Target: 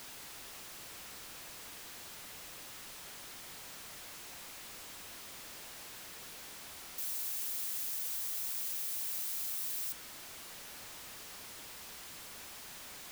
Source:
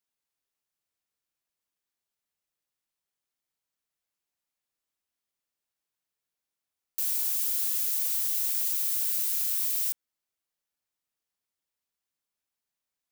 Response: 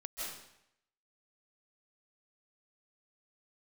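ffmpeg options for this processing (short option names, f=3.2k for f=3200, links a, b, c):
-af "aeval=exprs='val(0)+0.5*0.0282*sgn(val(0))':c=same,highshelf=f=6.3k:g=-5.5,volume=-7dB"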